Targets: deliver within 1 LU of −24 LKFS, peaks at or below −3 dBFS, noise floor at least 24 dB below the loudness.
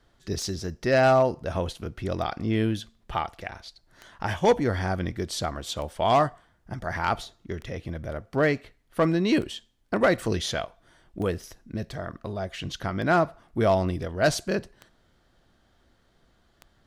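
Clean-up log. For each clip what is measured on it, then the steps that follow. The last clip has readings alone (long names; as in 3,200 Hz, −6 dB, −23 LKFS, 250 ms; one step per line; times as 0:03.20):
number of clicks 10; integrated loudness −27.0 LKFS; sample peak −12.0 dBFS; target loudness −24.0 LKFS
→ click removal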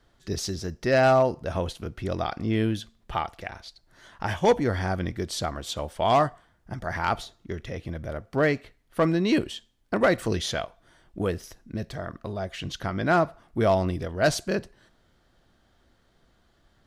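number of clicks 0; integrated loudness −27.0 LKFS; sample peak −12.0 dBFS; target loudness −24.0 LKFS
→ level +3 dB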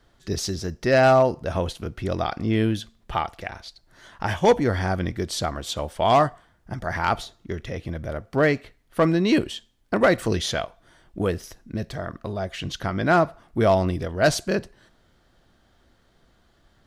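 integrated loudness −24.0 LKFS; sample peak −9.0 dBFS; background noise floor −62 dBFS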